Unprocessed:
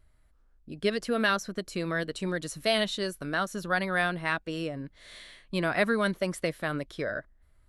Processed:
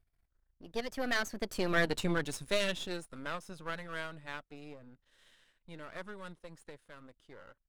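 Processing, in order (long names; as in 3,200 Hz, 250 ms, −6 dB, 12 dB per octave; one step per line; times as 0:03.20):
gain on one half-wave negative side −12 dB
source passing by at 0:01.86, 36 m/s, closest 12 metres
level +5.5 dB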